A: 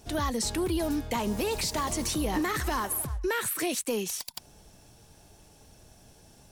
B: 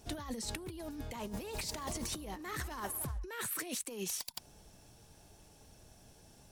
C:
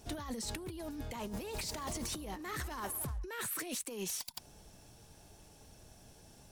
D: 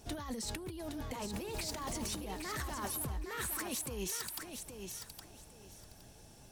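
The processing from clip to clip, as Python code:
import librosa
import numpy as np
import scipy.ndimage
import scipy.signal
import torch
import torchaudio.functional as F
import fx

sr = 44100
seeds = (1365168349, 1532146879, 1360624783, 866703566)

y1 = fx.over_compress(x, sr, threshold_db=-32.0, ratio=-0.5)
y1 = y1 * 10.0 ** (-7.5 / 20.0)
y2 = 10.0 ** (-33.0 / 20.0) * np.tanh(y1 / 10.0 ** (-33.0 / 20.0))
y2 = y2 * 10.0 ** (1.5 / 20.0)
y3 = fx.echo_feedback(y2, sr, ms=815, feedback_pct=22, wet_db=-6.5)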